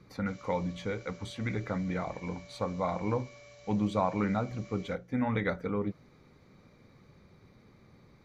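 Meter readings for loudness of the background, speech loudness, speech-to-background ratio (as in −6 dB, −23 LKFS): −53.0 LKFS, −33.5 LKFS, 19.5 dB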